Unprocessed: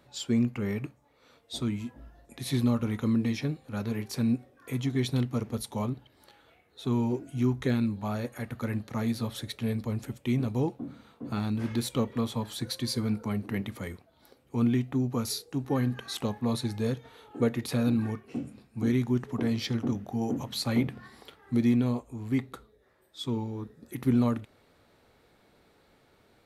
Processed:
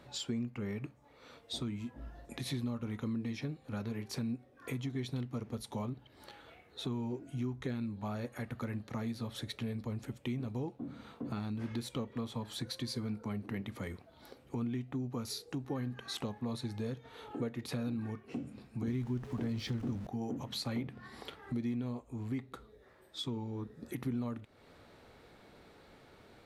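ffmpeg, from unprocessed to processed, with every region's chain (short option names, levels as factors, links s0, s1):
-filter_complex "[0:a]asettb=1/sr,asplit=3[s0][s1][s2];[s0]atrim=end=18.884[s3];[s1]atrim=start=18.88:end=20.07,asetpts=PTS-STARTPTS,afade=t=in:d=0.004:c=qsin,afade=t=out:st=1.186:d=0.004:c=qsin,aeval=exprs='val(0)+0.5*0.0126*sgn(val(0))':c=same,lowshelf=f=120:g=11.5[s4];[s2]atrim=start=20.066[s5];[s3][s4]acrossfade=d=0.004:c1=hsin:c2=qsin[s6];[s6][s5]acrossfade=d=0.004:c1=qsin:c2=hsin,highshelf=f=9200:g=-9,acompressor=threshold=0.00631:ratio=3,volume=1.68"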